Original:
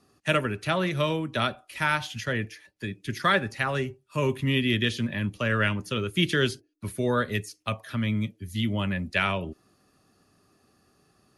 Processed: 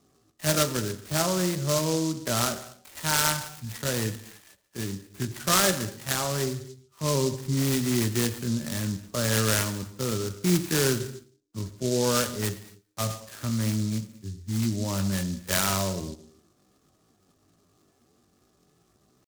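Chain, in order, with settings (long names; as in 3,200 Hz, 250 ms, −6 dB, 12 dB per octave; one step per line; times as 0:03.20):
low-pass filter 2,500 Hz 24 dB per octave
tempo change 0.59×
reverb whose tail is shaped and stops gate 310 ms falling, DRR 9 dB
short delay modulated by noise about 5,500 Hz, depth 0.12 ms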